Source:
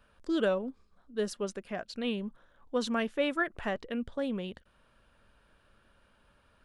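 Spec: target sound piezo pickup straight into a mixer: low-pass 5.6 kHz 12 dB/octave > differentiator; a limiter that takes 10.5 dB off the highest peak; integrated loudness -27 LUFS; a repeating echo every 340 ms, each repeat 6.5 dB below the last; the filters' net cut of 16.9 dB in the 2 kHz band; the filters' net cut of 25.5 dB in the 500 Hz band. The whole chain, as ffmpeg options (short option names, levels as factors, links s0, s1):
-af "equalizer=f=500:t=o:g=-3,equalizer=f=2000:t=o:g=-6.5,alimiter=level_in=2:limit=0.0631:level=0:latency=1,volume=0.501,lowpass=5600,aderivative,aecho=1:1:340|680|1020|1360|1700|2040:0.473|0.222|0.105|0.0491|0.0231|0.0109,volume=26.6"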